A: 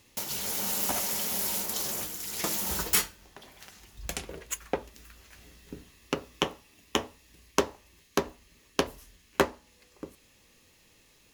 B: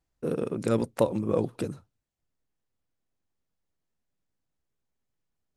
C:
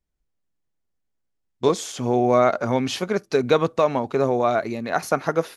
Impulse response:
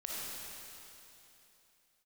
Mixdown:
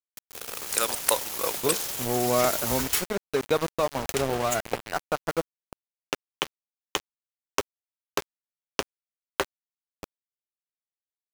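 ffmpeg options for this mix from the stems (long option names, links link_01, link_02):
-filter_complex "[0:a]equalizer=frequency=220:width=2.5:gain=-15,acompressor=threshold=-34dB:ratio=2,volume=-1dB[link_01];[1:a]crystalizer=i=3.5:c=0,highpass=1000,adelay=100,volume=3dB[link_02];[2:a]volume=-13dB[link_03];[link_01][link_02][link_03]amix=inputs=3:normalize=0,dynaudnorm=framelen=230:gausssize=5:maxgain=7dB,aeval=exprs='val(0)*gte(abs(val(0)),0.0447)':channel_layout=same"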